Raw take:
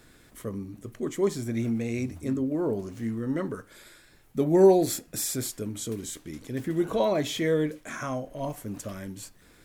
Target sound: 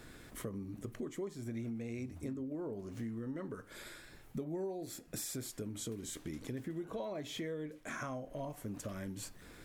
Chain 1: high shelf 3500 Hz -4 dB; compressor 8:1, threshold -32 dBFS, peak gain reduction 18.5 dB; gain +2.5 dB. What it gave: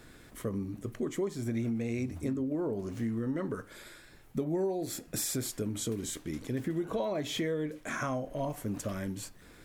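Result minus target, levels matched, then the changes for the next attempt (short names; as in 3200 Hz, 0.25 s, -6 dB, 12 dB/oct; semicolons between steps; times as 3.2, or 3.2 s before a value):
compressor: peak gain reduction -8.5 dB
change: compressor 8:1, threshold -41.5 dBFS, peak gain reduction 26.5 dB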